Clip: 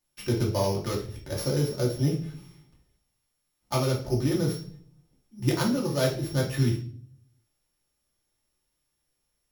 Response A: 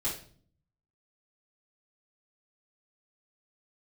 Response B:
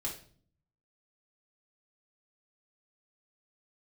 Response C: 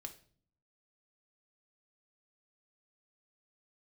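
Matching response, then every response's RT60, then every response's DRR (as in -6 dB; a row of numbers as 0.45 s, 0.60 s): B; 0.50 s, 0.50 s, 0.50 s; -9.5 dB, -3.5 dB, 5.0 dB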